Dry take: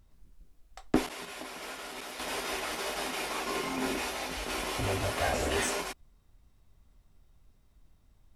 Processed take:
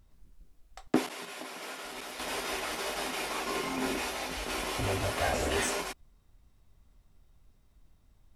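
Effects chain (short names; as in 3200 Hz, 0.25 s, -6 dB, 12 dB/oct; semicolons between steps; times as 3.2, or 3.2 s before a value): 0.87–1.85 HPF 140 Hz 12 dB/oct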